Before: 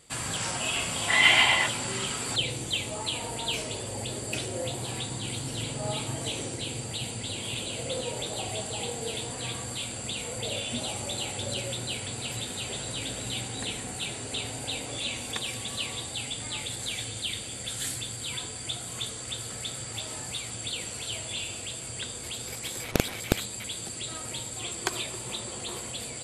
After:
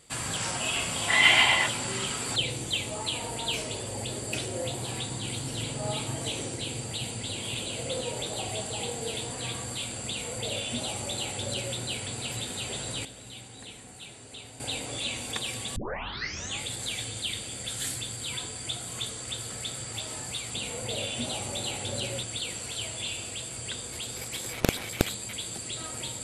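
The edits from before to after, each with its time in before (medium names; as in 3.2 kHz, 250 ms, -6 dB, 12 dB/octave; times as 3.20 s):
10.08–11.77 s: copy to 20.54 s
13.05–14.60 s: gain -11 dB
15.76 s: tape start 0.85 s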